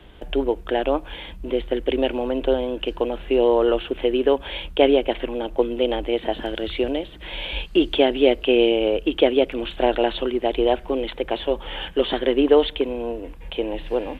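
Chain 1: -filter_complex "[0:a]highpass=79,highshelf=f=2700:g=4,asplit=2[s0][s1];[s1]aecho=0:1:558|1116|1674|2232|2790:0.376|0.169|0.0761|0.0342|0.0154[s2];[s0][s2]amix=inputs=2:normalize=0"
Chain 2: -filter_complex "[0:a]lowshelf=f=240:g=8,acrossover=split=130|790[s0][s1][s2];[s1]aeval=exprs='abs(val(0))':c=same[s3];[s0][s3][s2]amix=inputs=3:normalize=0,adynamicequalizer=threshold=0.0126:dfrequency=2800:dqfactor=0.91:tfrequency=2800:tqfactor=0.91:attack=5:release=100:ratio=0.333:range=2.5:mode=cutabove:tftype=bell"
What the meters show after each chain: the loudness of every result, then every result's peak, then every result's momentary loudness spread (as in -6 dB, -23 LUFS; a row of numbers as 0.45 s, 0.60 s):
-21.0 LUFS, -25.0 LUFS; -2.0 dBFS, -1.0 dBFS; 9 LU, 9 LU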